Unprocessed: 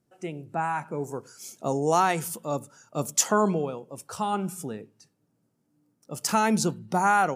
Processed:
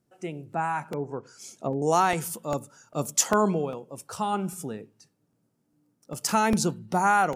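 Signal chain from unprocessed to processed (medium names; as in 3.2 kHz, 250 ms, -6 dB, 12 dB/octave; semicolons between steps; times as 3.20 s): 0.85–1.82 s: low-pass that closes with the level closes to 460 Hz, closed at -23.5 dBFS; crackling interface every 0.40 s, samples 64, repeat, from 0.53 s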